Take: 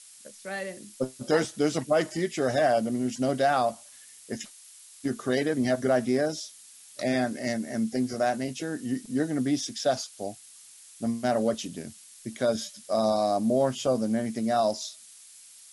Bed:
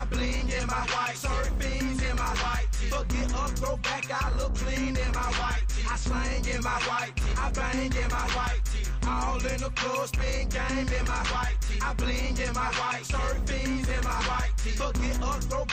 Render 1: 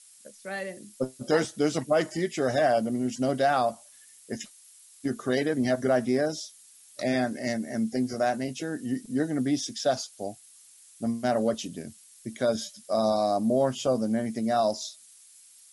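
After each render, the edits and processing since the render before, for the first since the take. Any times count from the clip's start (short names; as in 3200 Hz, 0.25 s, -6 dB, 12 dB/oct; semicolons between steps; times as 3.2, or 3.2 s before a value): denoiser 6 dB, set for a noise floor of -51 dBFS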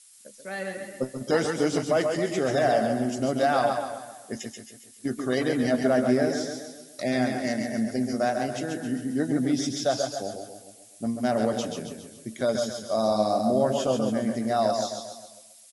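feedback echo 0.14 s, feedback 46%, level -7.5 dB; warbling echo 0.131 s, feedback 39%, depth 68 cents, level -8 dB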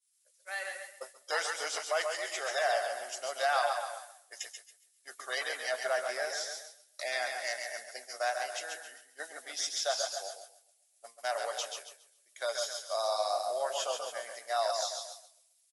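Bessel high-pass 1000 Hz, order 6; expander -40 dBFS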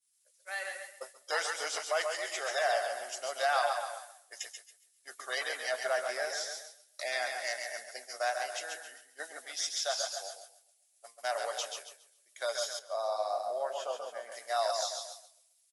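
9.46–11.18 low shelf 360 Hz -10 dB; 12.79–14.32 high shelf 2000 Hz -12 dB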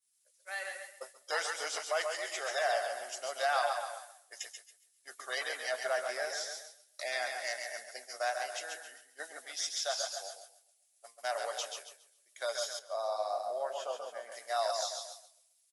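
gain -1.5 dB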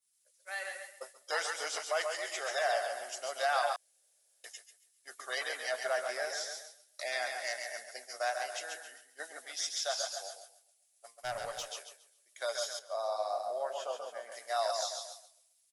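3.76–4.44 room tone; 11.2–11.71 tube stage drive 28 dB, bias 0.55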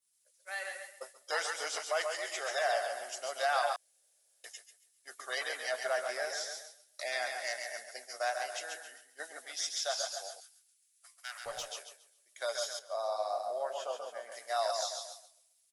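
10.4–11.46 HPF 1300 Hz 24 dB/oct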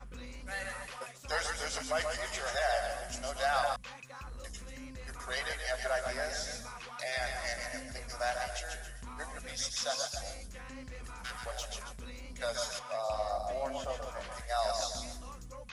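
add bed -18 dB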